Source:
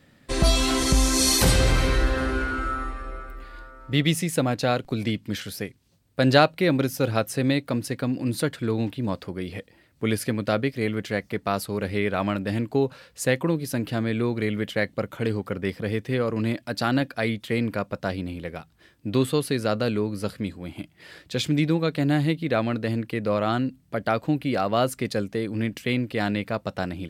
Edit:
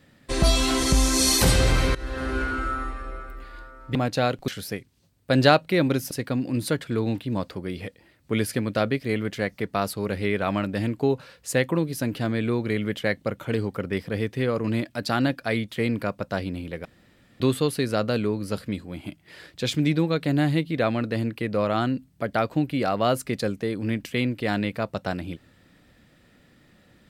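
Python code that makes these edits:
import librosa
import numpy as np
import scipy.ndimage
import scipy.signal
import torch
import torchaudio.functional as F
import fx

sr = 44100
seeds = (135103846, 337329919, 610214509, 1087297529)

y = fx.edit(x, sr, fx.fade_in_from(start_s=1.95, length_s=0.46, floor_db=-19.5),
    fx.cut(start_s=3.95, length_s=0.46),
    fx.cut(start_s=4.94, length_s=0.43),
    fx.cut(start_s=7.0, length_s=0.83),
    fx.room_tone_fill(start_s=18.57, length_s=0.55), tone=tone)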